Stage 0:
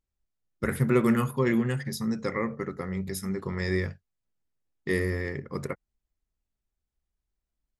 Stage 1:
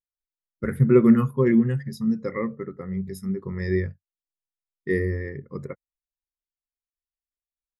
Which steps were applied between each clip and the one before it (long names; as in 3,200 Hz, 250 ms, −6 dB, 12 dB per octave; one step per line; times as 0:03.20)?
every bin expanded away from the loudest bin 1.5 to 1
level +6 dB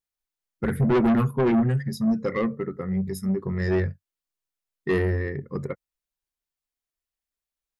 soft clipping −21.5 dBFS, distortion −6 dB
level +4.5 dB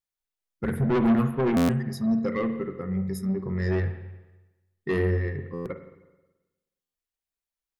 spring reverb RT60 1.1 s, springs 44/53 ms, chirp 30 ms, DRR 8 dB
buffer that repeats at 0:01.56/0:05.53/0:06.81, samples 512, times 10
level −3 dB